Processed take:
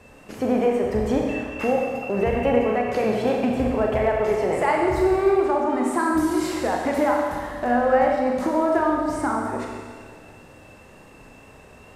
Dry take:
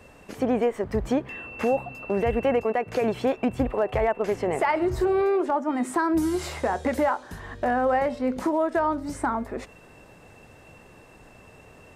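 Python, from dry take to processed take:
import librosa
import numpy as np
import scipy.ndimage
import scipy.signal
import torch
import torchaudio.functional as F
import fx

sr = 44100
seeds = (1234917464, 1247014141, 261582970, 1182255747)

y = fx.wow_flutter(x, sr, seeds[0], rate_hz=2.1, depth_cents=25.0)
y = fx.rev_schroeder(y, sr, rt60_s=1.8, comb_ms=29, drr_db=-0.5)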